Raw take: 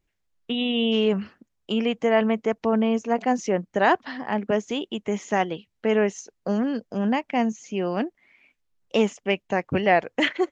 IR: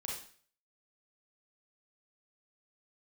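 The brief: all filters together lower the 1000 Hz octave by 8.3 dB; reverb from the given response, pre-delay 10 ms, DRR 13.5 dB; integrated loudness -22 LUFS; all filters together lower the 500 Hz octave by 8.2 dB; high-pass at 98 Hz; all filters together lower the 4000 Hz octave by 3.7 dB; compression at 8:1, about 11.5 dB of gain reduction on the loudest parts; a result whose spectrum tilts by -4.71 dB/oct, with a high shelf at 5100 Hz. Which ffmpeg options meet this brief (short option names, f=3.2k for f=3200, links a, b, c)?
-filter_complex "[0:a]highpass=98,equalizer=f=500:t=o:g=-8.5,equalizer=f=1k:t=o:g=-7.5,equalizer=f=4k:t=o:g=-7,highshelf=f=5.1k:g=5,acompressor=threshold=-33dB:ratio=8,asplit=2[a][b];[1:a]atrim=start_sample=2205,adelay=10[c];[b][c]afir=irnorm=-1:irlink=0,volume=-13.5dB[d];[a][d]amix=inputs=2:normalize=0,volume=15.5dB"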